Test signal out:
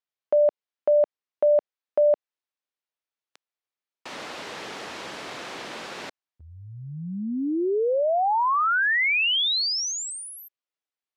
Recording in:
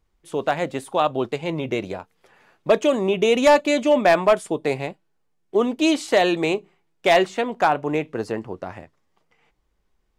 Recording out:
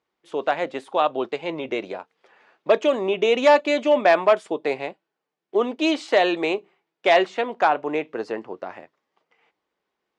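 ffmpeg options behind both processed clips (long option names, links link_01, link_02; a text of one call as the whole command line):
ffmpeg -i in.wav -af "highpass=320,lowpass=4500" out.wav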